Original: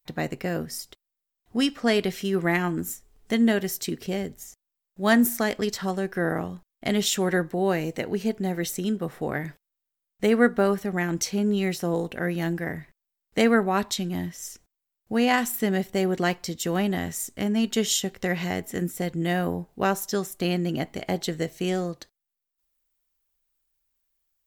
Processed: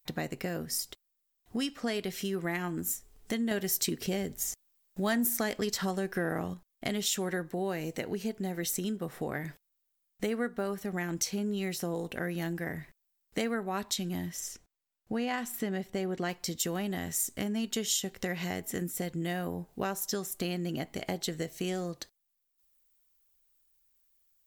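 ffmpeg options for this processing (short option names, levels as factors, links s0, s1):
-filter_complex "[0:a]asettb=1/sr,asplit=3[s0][s1][s2];[s0]atrim=end=3.514[s3];[s1]atrim=start=3.51:end=6.54,asetpts=PTS-STARTPTS,afade=t=in:d=0.004:c=qsin,afade=t=out:st=3.026:d=0.004:c=qsin,acontrast=90[s4];[s2]atrim=start=6.536[s5];[s3][s4]acrossfade=d=0.004:c1=hsin:c2=qsin[s6];[s6][s5]acrossfade=d=0.004:c1=qsin:c2=hsin,asettb=1/sr,asplit=3[s7][s8][s9];[s7]atrim=end=14.404[s10];[s8]atrim=start=14.4:end=16.29,asetpts=PTS-STARTPTS,afade=t=in:d=0.004:c=qsin,afade=t=out:st=1.886:d=0.004:c=qsin,lowpass=f=3700:p=1[s11];[s9]atrim=start=16.286[s12];[s10][s11]acrossfade=d=0.004:c1=hsin:c2=qsin[s13];[s13][s12]acrossfade=d=0.004:c1=qsin:c2=hsin,acompressor=threshold=0.0224:ratio=3,highshelf=f=4500:g=6"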